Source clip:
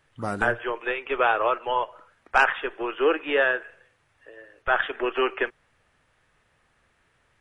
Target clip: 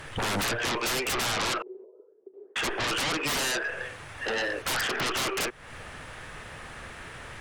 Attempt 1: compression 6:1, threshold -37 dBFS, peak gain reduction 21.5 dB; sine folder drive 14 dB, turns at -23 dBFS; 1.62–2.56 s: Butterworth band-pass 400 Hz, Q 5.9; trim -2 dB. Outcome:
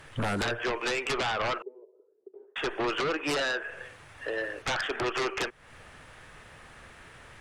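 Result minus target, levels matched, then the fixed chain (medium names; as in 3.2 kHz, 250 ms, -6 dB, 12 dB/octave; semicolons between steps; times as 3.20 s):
sine folder: distortion -15 dB
compression 6:1, threshold -37 dBFS, peak gain reduction 21.5 dB; sine folder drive 22 dB, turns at -23 dBFS; 1.62–2.56 s: Butterworth band-pass 400 Hz, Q 5.9; trim -2 dB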